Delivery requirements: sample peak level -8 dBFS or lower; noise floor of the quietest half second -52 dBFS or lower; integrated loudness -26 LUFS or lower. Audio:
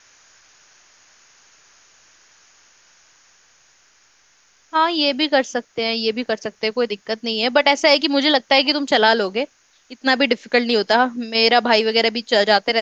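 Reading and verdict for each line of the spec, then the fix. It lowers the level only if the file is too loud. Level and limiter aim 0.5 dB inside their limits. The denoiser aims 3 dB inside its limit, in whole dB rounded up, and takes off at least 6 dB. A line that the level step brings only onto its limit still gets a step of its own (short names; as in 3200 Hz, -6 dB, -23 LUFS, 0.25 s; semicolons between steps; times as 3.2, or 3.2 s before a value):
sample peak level -2.0 dBFS: fail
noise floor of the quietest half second -57 dBFS: OK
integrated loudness -17.5 LUFS: fail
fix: gain -9 dB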